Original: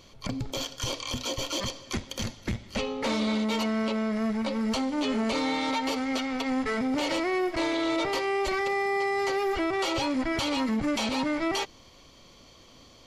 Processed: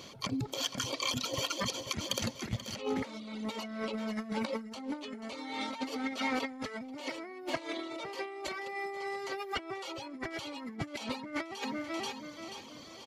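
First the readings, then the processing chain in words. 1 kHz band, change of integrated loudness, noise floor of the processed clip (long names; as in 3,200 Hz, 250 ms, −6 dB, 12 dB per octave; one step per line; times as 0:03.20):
−8.5 dB, −8.5 dB, −49 dBFS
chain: high-pass filter 130 Hz 12 dB per octave
reverb reduction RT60 1.5 s
repeating echo 484 ms, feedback 40%, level −14 dB
compressor whose output falls as the input rises −36 dBFS, ratio −0.5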